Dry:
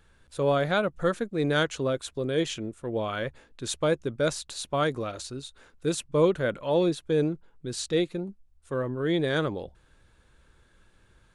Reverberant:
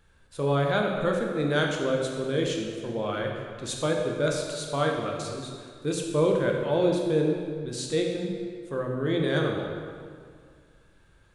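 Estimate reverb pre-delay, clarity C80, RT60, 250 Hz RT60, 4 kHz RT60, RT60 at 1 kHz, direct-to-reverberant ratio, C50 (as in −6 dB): 11 ms, 4.0 dB, 2.1 s, 2.2 s, 1.5 s, 2.1 s, 0.5 dB, 2.5 dB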